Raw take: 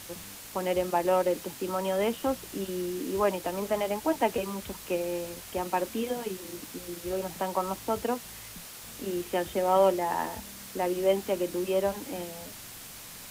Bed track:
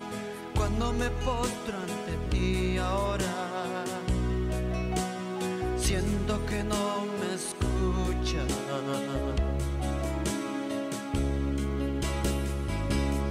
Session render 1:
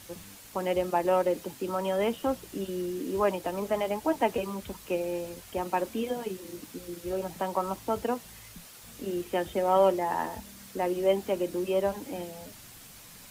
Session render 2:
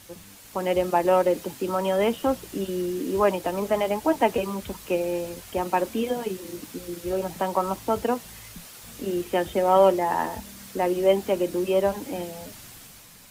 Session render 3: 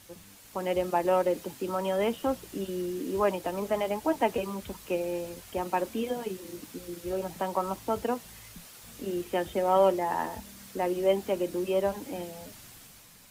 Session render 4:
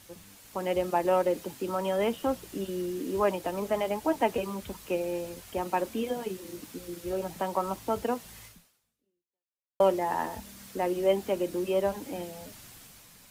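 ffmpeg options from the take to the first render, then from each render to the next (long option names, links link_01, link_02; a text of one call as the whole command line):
ffmpeg -i in.wav -af "afftdn=noise_reduction=6:noise_floor=-45" out.wav
ffmpeg -i in.wav -af "dynaudnorm=framelen=120:gausssize=9:maxgain=5dB" out.wav
ffmpeg -i in.wav -af "volume=-5dB" out.wav
ffmpeg -i in.wav -filter_complex "[0:a]asplit=2[link_01][link_02];[link_01]atrim=end=9.8,asetpts=PTS-STARTPTS,afade=type=out:start_time=8.45:duration=1.35:curve=exp[link_03];[link_02]atrim=start=9.8,asetpts=PTS-STARTPTS,afade=type=in:duration=0.004:curve=hsin[link_04];[link_03][link_04]concat=n=2:v=0:a=1" out.wav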